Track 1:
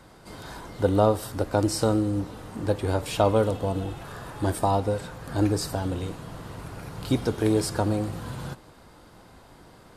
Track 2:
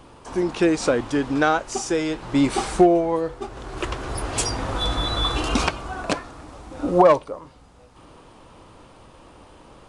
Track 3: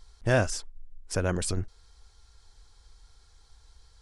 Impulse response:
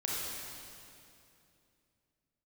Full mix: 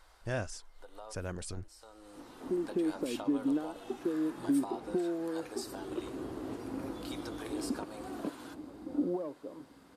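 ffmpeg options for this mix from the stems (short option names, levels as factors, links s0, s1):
-filter_complex "[0:a]highpass=770,acompressor=threshold=0.0224:ratio=4,volume=0.398[s0];[1:a]acompressor=threshold=0.0447:ratio=6,bandpass=f=290:t=q:w=2.5:csg=0,adelay=2150,volume=1.12[s1];[2:a]volume=0.266,asplit=2[s2][s3];[s3]apad=whole_len=439643[s4];[s0][s4]sidechaincompress=threshold=0.00251:ratio=12:attack=16:release=526[s5];[s5][s1][s2]amix=inputs=3:normalize=0"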